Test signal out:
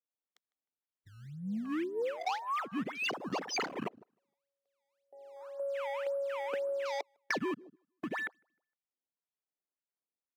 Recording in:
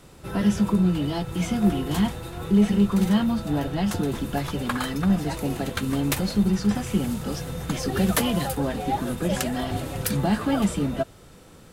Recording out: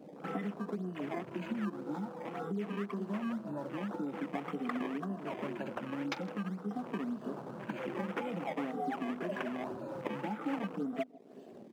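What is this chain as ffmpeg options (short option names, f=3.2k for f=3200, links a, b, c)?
-filter_complex "[0:a]afftfilt=real='re*pow(10,17/40*sin(2*PI*(1.4*log(max(b,1)*sr/1024/100)/log(2)-(-0.48)*(pts-256)/sr)))':imag='im*pow(10,17/40*sin(2*PI*(1.4*log(max(b,1)*sr/1024/100)/log(2)-(-0.48)*(pts-256)/sr)))':win_size=1024:overlap=0.75,acrusher=samples=18:mix=1:aa=0.000001:lfo=1:lforange=28.8:lforate=1.9,acompressor=threshold=-34dB:ratio=5,highpass=f=200:w=0.5412,highpass=f=200:w=1.3066,highshelf=f=11k:g=-8,asplit=2[a][b];[b]adelay=154,lowpass=f=2.4k:p=1,volume=-19dB,asplit=2[c][d];[d]adelay=154,lowpass=f=2.4k:p=1,volume=0.42,asplit=2[e][f];[f]adelay=154,lowpass=f=2.4k:p=1,volume=0.42[g];[c][e][g]amix=inputs=3:normalize=0[h];[a][h]amix=inputs=2:normalize=0,afwtdn=0.00562"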